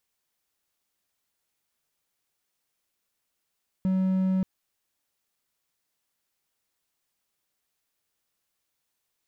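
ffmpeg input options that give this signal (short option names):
-f lavfi -i "aevalsrc='0.106*(1-4*abs(mod(188*t+0.25,1)-0.5))':d=0.58:s=44100"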